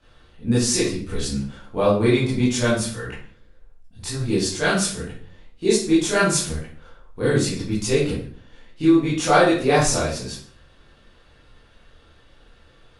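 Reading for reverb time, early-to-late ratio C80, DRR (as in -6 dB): 0.50 s, 7.5 dB, -10.0 dB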